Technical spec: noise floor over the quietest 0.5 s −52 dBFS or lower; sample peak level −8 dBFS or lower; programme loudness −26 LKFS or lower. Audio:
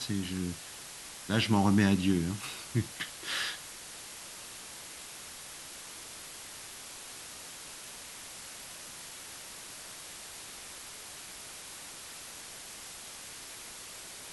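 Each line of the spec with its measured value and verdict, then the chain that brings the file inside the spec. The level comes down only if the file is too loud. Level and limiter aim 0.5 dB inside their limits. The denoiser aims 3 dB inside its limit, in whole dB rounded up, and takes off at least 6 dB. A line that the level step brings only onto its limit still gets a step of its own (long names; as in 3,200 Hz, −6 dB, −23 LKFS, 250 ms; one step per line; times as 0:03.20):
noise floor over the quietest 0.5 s −46 dBFS: out of spec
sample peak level −13.5 dBFS: in spec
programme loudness −36.5 LKFS: in spec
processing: broadband denoise 9 dB, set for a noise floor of −46 dBFS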